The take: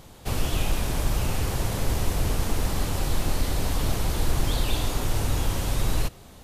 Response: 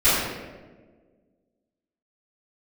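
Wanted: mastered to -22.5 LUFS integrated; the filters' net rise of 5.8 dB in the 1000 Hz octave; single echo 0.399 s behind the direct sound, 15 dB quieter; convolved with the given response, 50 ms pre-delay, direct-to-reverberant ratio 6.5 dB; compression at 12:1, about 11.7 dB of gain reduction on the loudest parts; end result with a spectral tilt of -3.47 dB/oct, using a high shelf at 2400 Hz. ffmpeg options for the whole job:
-filter_complex "[0:a]equalizer=f=1k:t=o:g=6,highshelf=f=2.4k:g=7.5,acompressor=threshold=-29dB:ratio=12,aecho=1:1:399:0.178,asplit=2[a][b];[1:a]atrim=start_sample=2205,adelay=50[c];[b][c]afir=irnorm=-1:irlink=0,volume=-26.5dB[d];[a][d]amix=inputs=2:normalize=0,volume=11dB"

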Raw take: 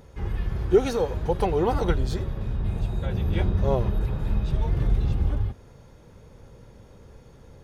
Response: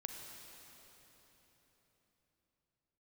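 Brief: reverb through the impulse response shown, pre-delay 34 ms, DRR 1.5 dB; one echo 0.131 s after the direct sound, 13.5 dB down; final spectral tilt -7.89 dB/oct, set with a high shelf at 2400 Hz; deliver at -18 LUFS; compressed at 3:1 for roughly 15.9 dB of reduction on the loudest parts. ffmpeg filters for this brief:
-filter_complex "[0:a]highshelf=f=2.4k:g=-5.5,acompressor=threshold=-37dB:ratio=3,aecho=1:1:131:0.211,asplit=2[a][b];[1:a]atrim=start_sample=2205,adelay=34[c];[b][c]afir=irnorm=-1:irlink=0,volume=0.5dB[d];[a][d]amix=inputs=2:normalize=0,volume=19dB"

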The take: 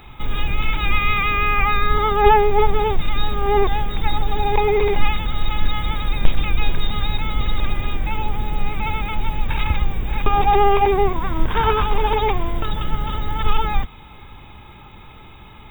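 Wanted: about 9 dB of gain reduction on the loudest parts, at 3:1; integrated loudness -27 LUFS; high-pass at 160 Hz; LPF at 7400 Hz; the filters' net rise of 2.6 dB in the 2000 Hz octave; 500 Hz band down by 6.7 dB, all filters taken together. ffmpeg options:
-af "highpass=160,lowpass=7.4k,equalizer=f=500:t=o:g=-9,equalizer=f=2k:t=o:g=3.5,acompressor=threshold=-25dB:ratio=3,volume=0.5dB"

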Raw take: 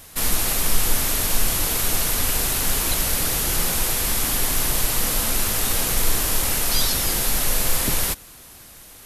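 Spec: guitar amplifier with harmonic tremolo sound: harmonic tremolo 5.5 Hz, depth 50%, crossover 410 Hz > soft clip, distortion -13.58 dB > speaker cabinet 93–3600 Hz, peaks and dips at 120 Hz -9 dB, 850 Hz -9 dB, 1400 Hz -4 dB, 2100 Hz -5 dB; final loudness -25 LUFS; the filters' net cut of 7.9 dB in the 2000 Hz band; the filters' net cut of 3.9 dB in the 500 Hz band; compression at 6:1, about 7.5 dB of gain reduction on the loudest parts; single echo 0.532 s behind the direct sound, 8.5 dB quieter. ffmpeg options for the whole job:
-filter_complex "[0:a]equalizer=f=500:t=o:g=-3.5,equalizer=f=2k:t=o:g=-6,acompressor=threshold=-20dB:ratio=6,aecho=1:1:532:0.376,acrossover=split=410[a][b];[a]aeval=exprs='val(0)*(1-0.5/2+0.5/2*cos(2*PI*5.5*n/s))':c=same[c];[b]aeval=exprs='val(0)*(1-0.5/2-0.5/2*cos(2*PI*5.5*n/s))':c=same[d];[c][d]amix=inputs=2:normalize=0,asoftclip=threshold=-23.5dB,highpass=93,equalizer=f=120:t=q:w=4:g=-9,equalizer=f=850:t=q:w=4:g=-9,equalizer=f=1.4k:t=q:w=4:g=-4,equalizer=f=2.1k:t=q:w=4:g=-5,lowpass=f=3.6k:w=0.5412,lowpass=f=3.6k:w=1.3066,volume=15.5dB"

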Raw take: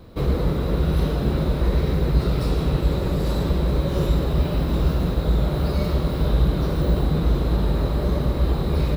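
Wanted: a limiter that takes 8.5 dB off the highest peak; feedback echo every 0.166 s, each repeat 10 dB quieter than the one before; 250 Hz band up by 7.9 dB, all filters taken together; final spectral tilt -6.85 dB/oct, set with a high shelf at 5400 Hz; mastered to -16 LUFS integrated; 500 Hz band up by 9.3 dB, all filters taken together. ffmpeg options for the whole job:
-af "equalizer=f=250:t=o:g=9,equalizer=f=500:t=o:g=8.5,highshelf=f=5.4k:g=8,alimiter=limit=-12.5dB:level=0:latency=1,aecho=1:1:166|332|498|664:0.316|0.101|0.0324|0.0104,volume=5dB"

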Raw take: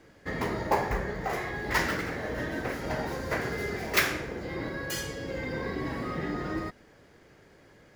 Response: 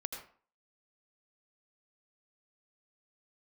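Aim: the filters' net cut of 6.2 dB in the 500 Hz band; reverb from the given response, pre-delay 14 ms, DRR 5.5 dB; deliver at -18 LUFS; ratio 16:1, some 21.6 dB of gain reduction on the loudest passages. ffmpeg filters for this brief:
-filter_complex "[0:a]equalizer=f=500:t=o:g=-8,acompressor=threshold=-41dB:ratio=16,asplit=2[a][b];[1:a]atrim=start_sample=2205,adelay=14[c];[b][c]afir=irnorm=-1:irlink=0,volume=-5.5dB[d];[a][d]amix=inputs=2:normalize=0,volume=26dB"

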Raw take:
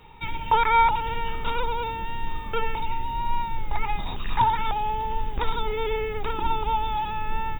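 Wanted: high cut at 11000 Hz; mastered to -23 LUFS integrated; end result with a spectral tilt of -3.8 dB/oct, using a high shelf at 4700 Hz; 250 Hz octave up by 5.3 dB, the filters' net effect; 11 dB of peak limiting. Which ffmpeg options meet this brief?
-af "lowpass=11k,equalizer=f=250:t=o:g=7,highshelf=f=4.7k:g=-5.5,volume=7dB,alimiter=limit=-12.5dB:level=0:latency=1"

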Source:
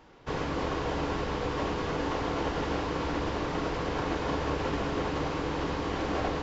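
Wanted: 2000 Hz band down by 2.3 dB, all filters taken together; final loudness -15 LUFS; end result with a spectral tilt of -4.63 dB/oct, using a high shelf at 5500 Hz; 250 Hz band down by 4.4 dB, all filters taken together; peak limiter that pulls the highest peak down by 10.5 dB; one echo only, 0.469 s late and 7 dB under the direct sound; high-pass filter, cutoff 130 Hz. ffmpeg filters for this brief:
-af "highpass=130,equalizer=f=250:t=o:g=-5.5,equalizer=f=2k:t=o:g=-3.5,highshelf=f=5.5k:g=4.5,alimiter=level_in=6dB:limit=-24dB:level=0:latency=1,volume=-6dB,aecho=1:1:469:0.447,volume=23dB"

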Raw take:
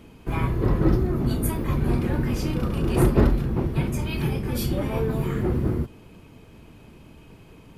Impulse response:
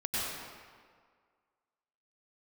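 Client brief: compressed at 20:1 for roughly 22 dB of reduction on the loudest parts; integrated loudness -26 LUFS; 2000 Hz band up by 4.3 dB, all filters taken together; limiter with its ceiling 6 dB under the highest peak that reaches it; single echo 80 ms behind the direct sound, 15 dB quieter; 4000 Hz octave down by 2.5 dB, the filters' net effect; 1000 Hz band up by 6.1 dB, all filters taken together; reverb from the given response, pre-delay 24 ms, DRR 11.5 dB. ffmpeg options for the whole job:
-filter_complex "[0:a]equalizer=f=1k:t=o:g=6.5,equalizer=f=2k:t=o:g=5,equalizer=f=4k:t=o:g=-6,acompressor=threshold=-34dB:ratio=20,alimiter=level_in=7.5dB:limit=-24dB:level=0:latency=1,volume=-7.5dB,aecho=1:1:80:0.178,asplit=2[a][b];[1:a]atrim=start_sample=2205,adelay=24[c];[b][c]afir=irnorm=-1:irlink=0,volume=-18.5dB[d];[a][d]amix=inputs=2:normalize=0,volume=15.5dB"

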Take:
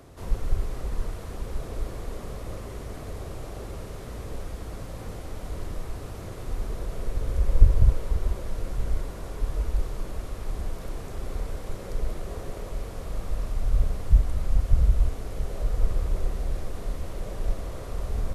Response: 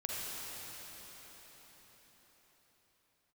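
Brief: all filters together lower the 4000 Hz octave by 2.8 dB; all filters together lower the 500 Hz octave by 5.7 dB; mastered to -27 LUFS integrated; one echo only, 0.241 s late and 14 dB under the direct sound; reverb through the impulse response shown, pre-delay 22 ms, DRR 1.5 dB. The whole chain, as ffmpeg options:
-filter_complex "[0:a]equalizer=f=500:t=o:g=-7,equalizer=f=4k:t=o:g=-3.5,aecho=1:1:241:0.2,asplit=2[a][b];[1:a]atrim=start_sample=2205,adelay=22[c];[b][c]afir=irnorm=-1:irlink=0,volume=-5dB[d];[a][d]amix=inputs=2:normalize=0,volume=2.5dB"

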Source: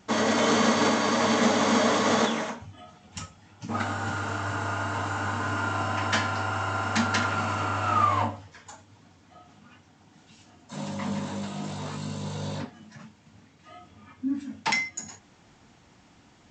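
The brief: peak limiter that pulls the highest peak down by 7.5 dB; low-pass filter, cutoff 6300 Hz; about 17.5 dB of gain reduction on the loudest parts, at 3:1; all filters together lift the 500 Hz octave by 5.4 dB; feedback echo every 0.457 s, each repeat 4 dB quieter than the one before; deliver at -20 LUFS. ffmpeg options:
-af "lowpass=6.3k,equalizer=f=500:t=o:g=6.5,acompressor=threshold=-41dB:ratio=3,alimiter=level_in=7dB:limit=-24dB:level=0:latency=1,volume=-7dB,aecho=1:1:457|914|1371|1828|2285|2742|3199|3656|4113:0.631|0.398|0.25|0.158|0.0994|0.0626|0.0394|0.0249|0.0157,volume=20.5dB"

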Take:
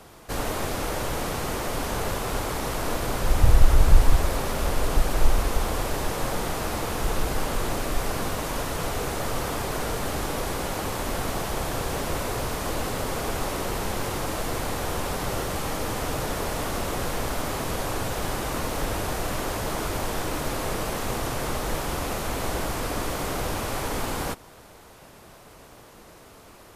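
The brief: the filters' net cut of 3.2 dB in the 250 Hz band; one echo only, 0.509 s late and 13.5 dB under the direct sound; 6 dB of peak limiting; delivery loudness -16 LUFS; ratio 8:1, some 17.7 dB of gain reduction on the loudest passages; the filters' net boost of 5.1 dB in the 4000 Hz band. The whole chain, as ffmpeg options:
-af "equalizer=f=250:t=o:g=-4.5,equalizer=f=4k:t=o:g=6.5,acompressor=threshold=-27dB:ratio=8,alimiter=limit=-23.5dB:level=0:latency=1,aecho=1:1:509:0.211,volume=17.5dB"

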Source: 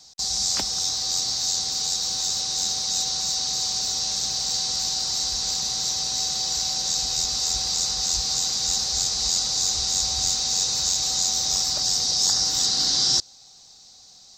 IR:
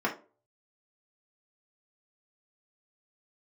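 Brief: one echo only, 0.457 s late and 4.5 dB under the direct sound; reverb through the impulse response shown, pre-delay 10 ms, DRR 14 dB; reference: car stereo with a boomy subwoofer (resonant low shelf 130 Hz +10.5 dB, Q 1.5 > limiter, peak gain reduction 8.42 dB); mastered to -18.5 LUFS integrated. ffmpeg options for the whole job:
-filter_complex "[0:a]aecho=1:1:457:0.596,asplit=2[a][b];[1:a]atrim=start_sample=2205,adelay=10[c];[b][c]afir=irnorm=-1:irlink=0,volume=-24dB[d];[a][d]amix=inputs=2:normalize=0,lowshelf=f=130:t=q:w=1.5:g=10.5,volume=4.5dB,alimiter=limit=-11dB:level=0:latency=1"

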